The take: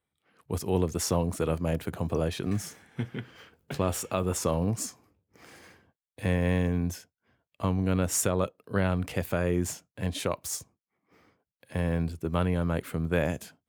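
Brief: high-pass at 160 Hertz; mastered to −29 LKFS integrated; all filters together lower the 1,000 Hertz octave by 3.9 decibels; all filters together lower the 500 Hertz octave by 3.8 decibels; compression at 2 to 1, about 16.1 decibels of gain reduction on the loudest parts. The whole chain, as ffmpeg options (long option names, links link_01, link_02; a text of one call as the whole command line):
ffmpeg -i in.wav -af "highpass=160,equalizer=frequency=500:width_type=o:gain=-3.5,equalizer=frequency=1000:width_type=o:gain=-4,acompressor=threshold=-56dB:ratio=2,volume=19dB" out.wav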